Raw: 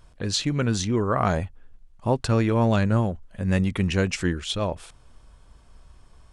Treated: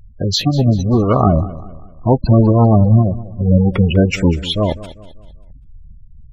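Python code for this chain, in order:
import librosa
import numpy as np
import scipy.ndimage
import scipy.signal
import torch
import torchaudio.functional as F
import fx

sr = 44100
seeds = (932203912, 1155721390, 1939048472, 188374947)

y = fx.halfwave_hold(x, sr)
y = fx.spec_gate(y, sr, threshold_db=-15, keep='strong')
y = fx.echo_feedback(y, sr, ms=196, feedback_pct=42, wet_db=-17)
y = y * librosa.db_to_amplitude(6.5)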